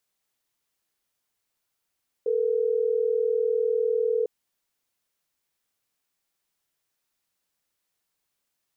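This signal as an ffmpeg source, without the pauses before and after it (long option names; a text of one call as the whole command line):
ffmpeg -f lavfi -i "aevalsrc='0.0631*(sin(2*PI*440*t)+sin(2*PI*480*t))*clip(min(mod(t,6),2-mod(t,6))/0.005,0,1)':duration=3.12:sample_rate=44100" out.wav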